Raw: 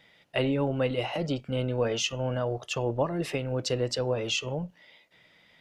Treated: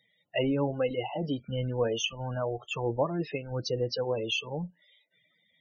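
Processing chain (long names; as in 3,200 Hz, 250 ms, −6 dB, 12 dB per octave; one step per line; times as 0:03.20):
spectral peaks only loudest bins 32
noise reduction from a noise print of the clip's start 10 dB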